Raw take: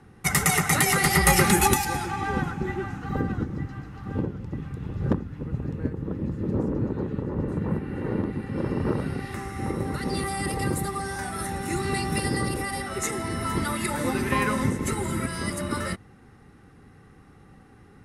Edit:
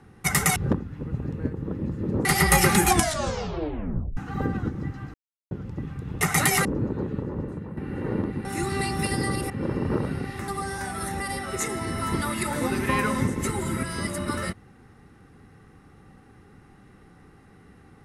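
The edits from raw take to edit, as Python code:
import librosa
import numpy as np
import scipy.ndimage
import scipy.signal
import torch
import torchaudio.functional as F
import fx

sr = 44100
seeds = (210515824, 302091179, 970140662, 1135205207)

y = fx.edit(x, sr, fx.swap(start_s=0.56, length_s=0.44, other_s=4.96, other_length_s=1.69),
    fx.tape_stop(start_s=1.57, length_s=1.35),
    fx.silence(start_s=3.89, length_s=0.37),
    fx.fade_out_to(start_s=7.17, length_s=0.6, floor_db=-13.5),
    fx.cut(start_s=9.43, length_s=1.43),
    fx.move(start_s=11.58, length_s=1.05, to_s=8.45), tone=tone)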